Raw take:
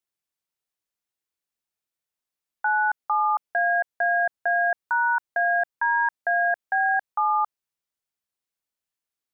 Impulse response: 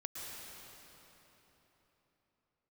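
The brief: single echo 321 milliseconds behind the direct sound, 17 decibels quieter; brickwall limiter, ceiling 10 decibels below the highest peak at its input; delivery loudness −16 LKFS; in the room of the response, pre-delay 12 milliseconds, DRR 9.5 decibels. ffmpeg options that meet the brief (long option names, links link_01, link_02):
-filter_complex "[0:a]alimiter=level_in=1.5dB:limit=-24dB:level=0:latency=1,volume=-1.5dB,aecho=1:1:321:0.141,asplit=2[link_01][link_02];[1:a]atrim=start_sample=2205,adelay=12[link_03];[link_02][link_03]afir=irnorm=-1:irlink=0,volume=-9dB[link_04];[link_01][link_04]amix=inputs=2:normalize=0,volume=18dB"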